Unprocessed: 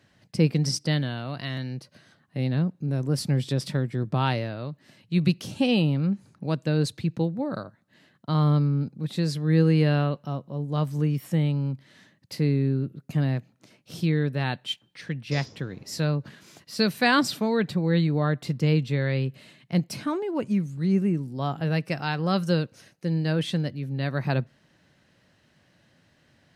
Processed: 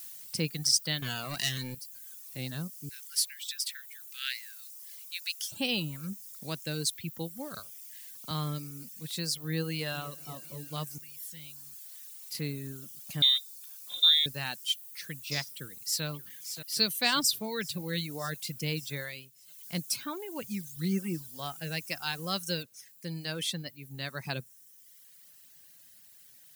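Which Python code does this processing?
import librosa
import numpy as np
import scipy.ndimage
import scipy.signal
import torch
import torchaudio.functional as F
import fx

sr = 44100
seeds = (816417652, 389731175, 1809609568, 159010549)

y = fx.leveller(x, sr, passes=3, at=(1.02, 1.75))
y = fx.steep_highpass(y, sr, hz=1500.0, slope=72, at=(2.89, 5.52))
y = fx.band_squash(y, sr, depth_pct=40, at=(7.59, 8.31))
y = fx.echo_throw(y, sr, start_s=9.69, length_s=0.41, ms=240, feedback_pct=70, wet_db=-15.5)
y = fx.tone_stack(y, sr, knobs='5-5-5', at=(10.98, 12.35))
y = fx.freq_invert(y, sr, carrier_hz=3800, at=(13.22, 14.26))
y = fx.echo_throw(y, sr, start_s=15.48, length_s=0.56, ms=580, feedback_pct=75, wet_db=-9.0)
y = fx.peak_eq(y, sr, hz=1700.0, db=-5.0, octaves=0.69, at=(16.8, 17.49))
y = fx.comb(y, sr, ms=5.8, depth=0.98, at=(20.76, 21.28))
y = fx.noise_floor_step(y, sr, seeds[0], at_s=22.63, before_db=-55, after_db=-64, tilt_db=0.0)
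y = fx.edit(y, sr, fx.fade_down_up(start_s=19.0, length_s=0.76, db=-10.0, fade_s=0.32), tone=tone)
y = fx.dereverb_blind(y, sr, rt60_s=1.1)
y = librosa.effects.preemphasis(y, coef=0.9, zi=[0.0])
y = y * 10.0 ** (8.0 / 20.0)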